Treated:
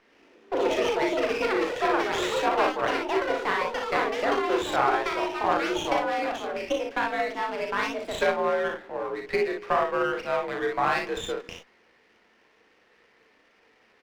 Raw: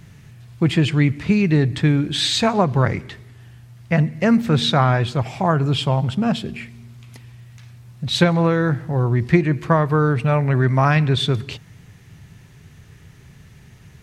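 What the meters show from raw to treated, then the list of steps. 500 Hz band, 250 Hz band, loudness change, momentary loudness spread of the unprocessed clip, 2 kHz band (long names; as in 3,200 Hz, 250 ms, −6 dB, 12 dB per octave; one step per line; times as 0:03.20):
−2.0 dB, −13.5 dB, −8.0 dB, 7 LU, −2.0 dB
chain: delay with pitch and tempo change per echo 104 ms, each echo +6 semitones, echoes 3
on a send: ambience of single reflections 36 ms −5.5 dB, 59 ms −5 dB
on the sum: single-sideband voice off tune +57 Hz 320–3,300 Hz
windowed peak hold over 5 samples
level −6.5 dB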